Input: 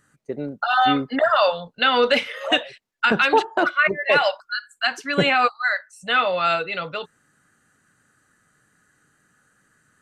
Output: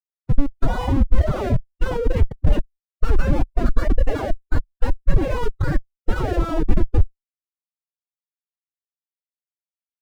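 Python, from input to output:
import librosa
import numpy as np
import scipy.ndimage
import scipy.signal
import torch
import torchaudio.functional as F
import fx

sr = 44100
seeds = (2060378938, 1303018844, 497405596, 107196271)

y = fx.schmitt(x, sr, flips_db=-22.5)
y = fx.pitch_keep_formants(y, sr, semitones=11.5)
y = fx.tilt_eq(y, sr, slope=-4.5)
y = y * librosa.db_to_amplitude(-4.0)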